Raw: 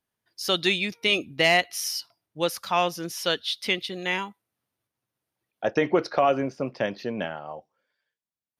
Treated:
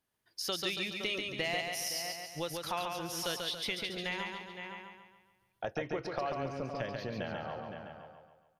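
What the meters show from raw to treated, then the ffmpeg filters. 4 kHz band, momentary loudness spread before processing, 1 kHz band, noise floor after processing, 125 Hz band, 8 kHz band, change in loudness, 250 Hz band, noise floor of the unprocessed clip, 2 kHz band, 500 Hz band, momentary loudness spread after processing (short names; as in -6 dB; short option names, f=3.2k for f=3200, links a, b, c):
-9.0 dB, 11 LU, -11.0 dB, -76 dBFS, -6.5 dB, -5.5 dB, -11.0 dB, -11.0 dB, under -85 dBFS, -11.0 dB, -11.5 dB, 12 LU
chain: -filter_complex "[0:a]asplit=2[a][b];[b]adelay=513.1,volume=-15dB,highshelf=f=4k:g=-11.5[c];[a][c]amix=inputs=2:normalize=0,acompressor=threshold=-37dB:ratio=3,asplit=2[d][e];[e]aecho=0:1:140|280|420|560|700|840:0.631|0.303|0.145|0.0698|0.0335|0.0161[f];[d][f]amix=inputs=2:normalize=0,asubboost=boost=6.5:cutoff=93"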